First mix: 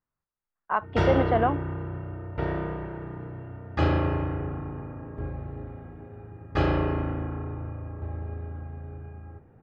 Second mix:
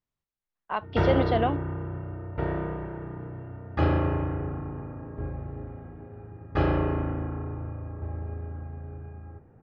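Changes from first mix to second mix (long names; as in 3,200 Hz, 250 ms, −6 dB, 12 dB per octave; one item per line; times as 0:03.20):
speech: remove low-pass with resonance 1,400 Hz, resonance Q 1.7
master: add low-pass filter 2,300 Hz 6 dB per octave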